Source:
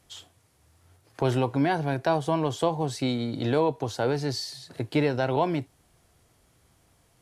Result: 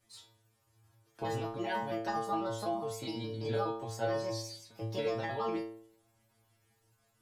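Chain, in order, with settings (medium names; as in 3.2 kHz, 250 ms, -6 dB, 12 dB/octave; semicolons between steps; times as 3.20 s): pitch shift switched off and on +4 st, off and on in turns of 83 ms; inharmonic resonator 110 Hz, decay 0.68 s, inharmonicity 0.002; trim +5.5 dB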